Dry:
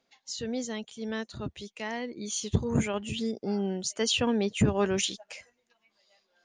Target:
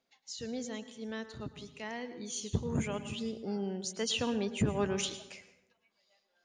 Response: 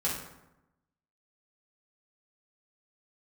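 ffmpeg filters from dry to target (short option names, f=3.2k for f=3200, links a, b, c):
-filter_complex "[0:a]asplit=2[a][b];[1:a]atrim=start_sample=2205,adelay=104[c];[b][c]afir=irnorm=-1:irlink=0,volume=-18.5dB[d];[a][d]amix=inputs=2:normalize=0,volume=-6dB"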